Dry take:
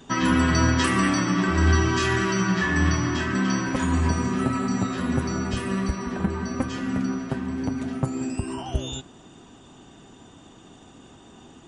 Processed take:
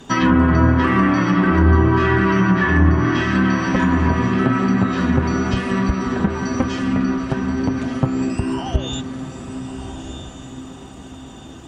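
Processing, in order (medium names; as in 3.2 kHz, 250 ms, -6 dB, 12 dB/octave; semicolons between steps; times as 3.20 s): echo that smears into a reverb 1292 ms, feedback 41%, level -10 dB; crackle 390 per s -54 dBFS; low-pass that closes with the level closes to 1.3 kHz, closed at -16 dBFS; trim +6.5 dB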